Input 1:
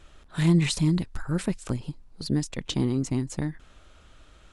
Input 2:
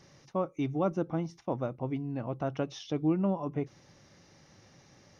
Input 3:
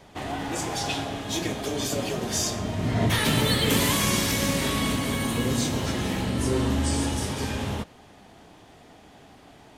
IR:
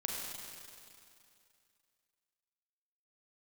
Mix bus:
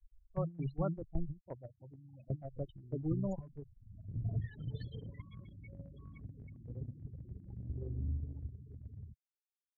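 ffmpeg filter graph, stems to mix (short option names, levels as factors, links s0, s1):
-filter_complex "[0:a]alimiter=limit=0.126:level=0:latency=1:release=376,acompressor=threshold=0.0251:ratio=10,volume=0.841,asplit=3[s0][s1][s2];[s0]atrim=end=1.41,asetpts=PTS-STARTPTS,afade=t=out:st=1.406:d=0.004:c=hsin[s3];[s1]atrim=start=1.41:end=2.28,asetpts=PTS-STARTPTS,volume=0[s4];[s2]atrim=start=2.28,asetpts=PTS-STARTPTS,afade=t=in:d=0.004:c=hsin[s5];[s3][s4][s5]concat=n=3:v=0:a=1[s6];[1:a]adynamicequalizer=threshold=0.00708:dfrequency=430:dqfactor=2.7:tfrequency=430:tqfactor=2.7:attack=5:release=100:ratio=0.375:range=2:mode=cutabove:tftype=bell,volume=0.708,asplit=2[s7][s8];[2:a]asoftclip=type=tanh:threshold=0.0891,adelay=1300,volume=0.501[s9];[s8]apad=whole_len=488317[s10];[s9][s10]sidechaincompress=threshold=0.00891:ratio=16:attack=11:release=590[s11];[s6][s11]amix=inputs=2:normalize=0,lowshelf=f=150:g=8,acompressor=threshold=0.0224:ratio=2,volume=1[s12];[s7][s12]amix=inputs=2:normalize=0,afftfilt=real='re*gte(hypot(re,im),0.0501)':imag='im*gte(hypot(re,im),0.0501)':win_size=1024:overlap=0.75,agate=range=0.178:threshold=0.0251:ratio=16:detection=peak,equalizer=f=125:t=o:w=1:g=4,equalizer=f=250:t=o:w=1:g=-11,equalizer=f=1000:t=o:w=1:g=-8,equalizer=f=2000:t=o:w=1:g=8,equalizer=f=4000:t=o:w=1:g=-11"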